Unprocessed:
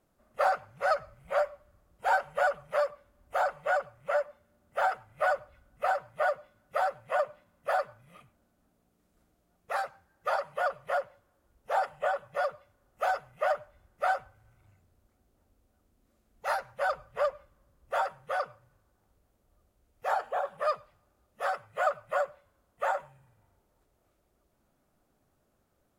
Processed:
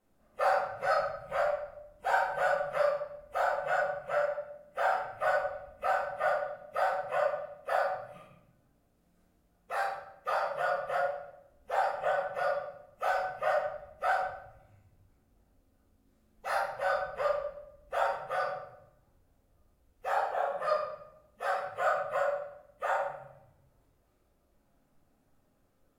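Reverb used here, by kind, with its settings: shoebox room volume 210 m³, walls mixed, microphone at 2 m; gain -6.5 dB

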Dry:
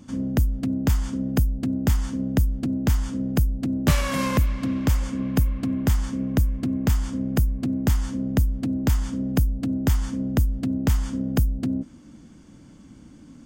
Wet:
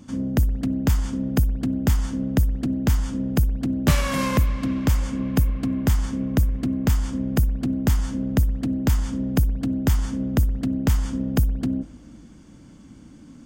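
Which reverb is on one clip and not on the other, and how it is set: spring tank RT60 2.1 s, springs 59 ms, chirp 70 ms, DRR 18.5 dB; gain +1 dB

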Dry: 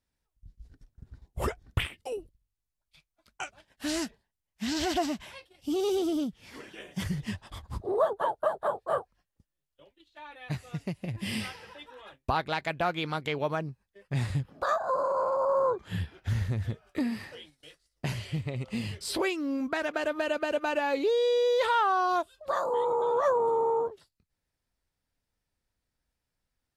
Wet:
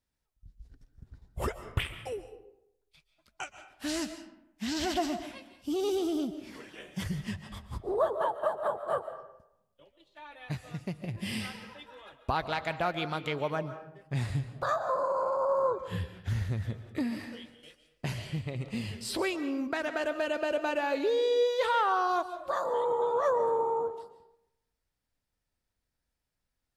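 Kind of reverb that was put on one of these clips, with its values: digital reverb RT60 0.82 s, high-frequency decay 0.6×, pre-delay 0.1 s, DRR 10.5 dB; gain -2 dB

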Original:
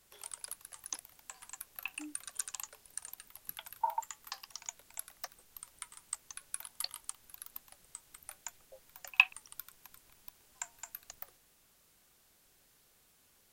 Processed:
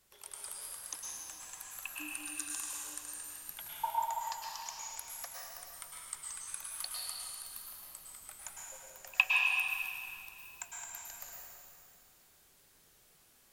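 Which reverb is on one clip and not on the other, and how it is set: plate-style reverb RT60 2.4 s, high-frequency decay 0.95×, pre-delay 95 ms, DRR -4.5 dB; gain -3 dB

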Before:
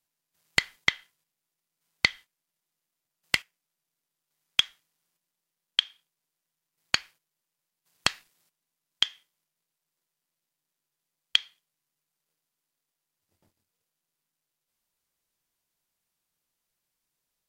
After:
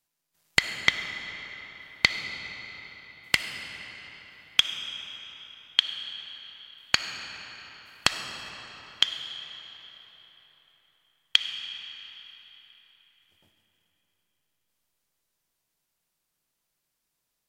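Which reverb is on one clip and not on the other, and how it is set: digital reverb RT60 4.3 s, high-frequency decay 0.75×, pre-delay 20 ms, DRR 6.5 dB; gain +2 dB

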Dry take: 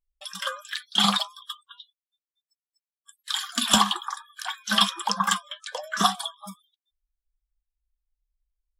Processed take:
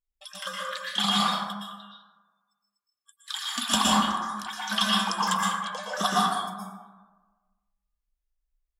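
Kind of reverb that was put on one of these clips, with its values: plate-style reverb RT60 1.3 s, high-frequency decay 0.35×, pre-delay 0.105 s, DRR -5 dB; gain -6 dB

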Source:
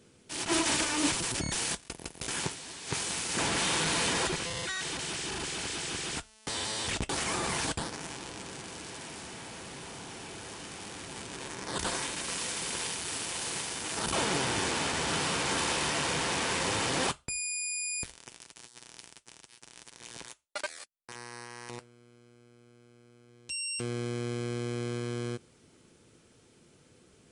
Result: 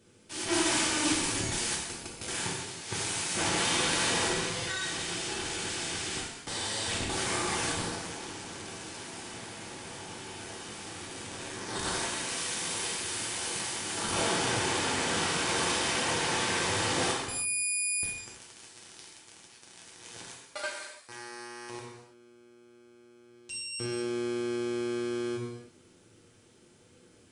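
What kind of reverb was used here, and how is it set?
non-linear reverb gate 0.36 s falling, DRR -3.5 dB; gain -4 dB

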